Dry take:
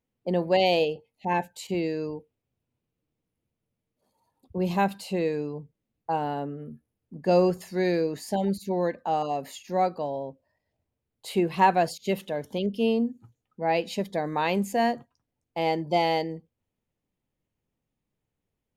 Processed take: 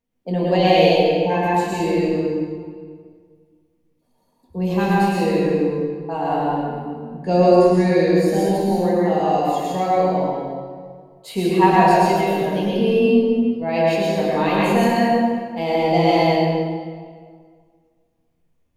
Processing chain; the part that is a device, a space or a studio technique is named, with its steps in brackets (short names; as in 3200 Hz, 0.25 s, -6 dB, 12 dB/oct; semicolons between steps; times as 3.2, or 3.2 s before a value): 7.16–8.02 steep low-pass 11000 Hz 96 dB/oct; shoebox room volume 230 m³, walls furnished, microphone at 1.7 m; stairwell (reverb RT60 1.9 s, pre-delay 98 ms, DRR -5.5 dB); gain -1 dB